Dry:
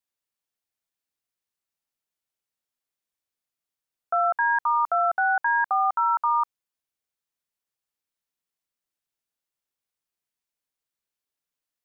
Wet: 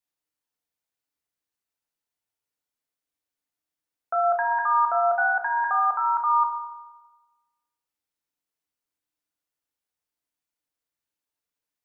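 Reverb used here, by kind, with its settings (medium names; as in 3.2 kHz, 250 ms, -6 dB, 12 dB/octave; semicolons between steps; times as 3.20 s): FDN reverb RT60 1.2 s, low-frequency decay 1.05×, high-frequency decay 0.3×, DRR 2 dB; trim -2 dB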